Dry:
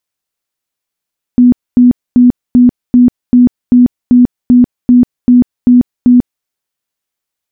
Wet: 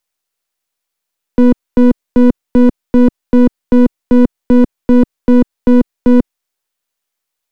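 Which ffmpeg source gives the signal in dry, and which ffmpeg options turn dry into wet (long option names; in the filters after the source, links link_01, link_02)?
-f lavfi -i "aevalsrc='0.841*sin(2*PI*246*mod(t,0.39))*lt(mod(t,0.39),35/246)':duration=5.07:sample_rate=44100"
-filter_complex "[0:a]aeval=exprs='if(lt(val(0),0),0.251*val(0),val(0))':channel_layout=same,acrossover=split=190|320[link_01][link_02][link_03];[link_03]acontrast=47[link_04];[link_01][link_02][link_04]amix=inputs=3:normalize=0"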